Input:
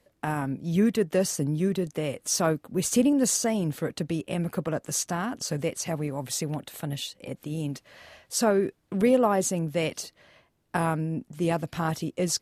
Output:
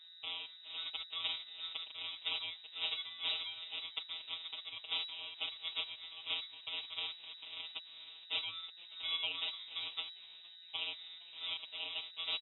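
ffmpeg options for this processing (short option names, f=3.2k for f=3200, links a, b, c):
-filter_complex "[0:a]aderivative,acrossover=split=870[a][b];[b]acompressor=threshold=-41dB:ratio=5[c];[a][c]amix=inputs=2:normalize=0,aeval=exprs='val(0)+0.00158*(sin(2*PI*60*n/s)+sin(2*PI*2*60*n/s)/2+sin(2*PI*3*60*n/s)/3+sin(2*PI*4*60*n/s)/4+sin(2*PI*5*60*n/s)/5)':c=same,acrusher=samples=20:mix=1:aa=0.000001,afftfilt=real='hypot(re,im)*cos(PI*b)':imag='0':win_size=1024:overlap=0.75,asplit=2[d][e];[e]asplit=4[f][g][h][i];[f]adelay=463,afreqshift=110,volume=-21dB[j];[g]adelay=926,afreqshift=220,volume=-27.2dB[k];[h]adelay=1389,afreqshift=330,volume=-33.4dB[l];[i]adelay=1852,afreqshift=440,volume=-39.6dB[m];[j][k][l][m]amix=inputs=4:normalize=0[n];[d][n]amix=inputs=2:normalize=0,lowpass=f=3.3k:t=q:w=0.5098,lowpass=f=3.3k:t=q:w=0.6013,lowpass=f=3.3k:t=q:w=0.9,lowpass=f=3.3k:t=q:w=2.563,afreqshift=-3900,volume=7.5dB"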